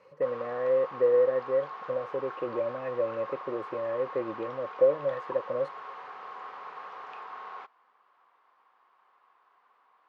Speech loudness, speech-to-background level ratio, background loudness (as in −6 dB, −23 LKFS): −30.0 LKFS, 12.0 dB, −42.0 LKFS